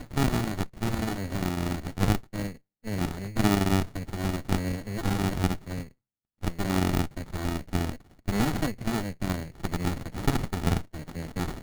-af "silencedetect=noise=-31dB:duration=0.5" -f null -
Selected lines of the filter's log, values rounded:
silence_start: 5.82
silence_end: 6.43 | silence_duration: 0.62